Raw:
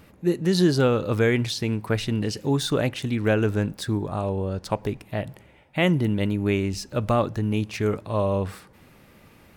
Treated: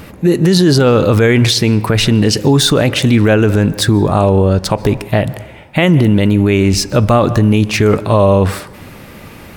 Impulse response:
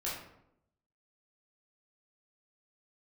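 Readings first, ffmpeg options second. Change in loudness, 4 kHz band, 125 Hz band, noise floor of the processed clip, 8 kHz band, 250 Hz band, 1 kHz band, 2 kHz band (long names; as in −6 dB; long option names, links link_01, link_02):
+13.0 dB, +15.5 dB, +13.5 dB, −35 dBFS, +16.5 dB, +12.5 dB, +12.5 dB, +11.5 dB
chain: -filter_complex "[0:a]asplit=2[link_01][link_02];[1:a]atrim=start_sample=2205,adelay=127[link_03];[link_02][link_03]afir=irnorm=-1:irlink=0,volume=-25.5dB[link_04];[link_01][link_04]amix=inputs=2:normalize=0,alimiter=level_in=19dB:limit=-1dB:release=50:level=0:latency=1,volume=-1dB"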